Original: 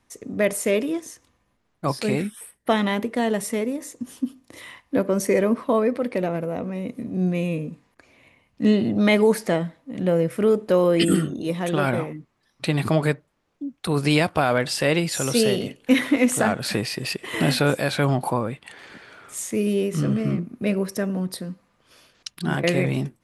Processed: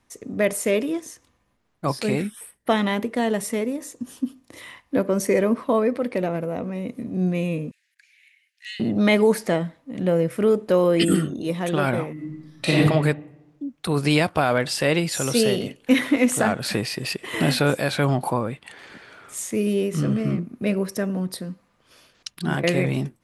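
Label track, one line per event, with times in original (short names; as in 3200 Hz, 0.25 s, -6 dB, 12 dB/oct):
3.810000	4.240000	notch 2100 Hz
7.710000	8.800000	steep high-pass 1600 Hz 72 dB/oct
12.130000	12.780000	reverb throw, RT60 0.99 s, DRR -6.5 dB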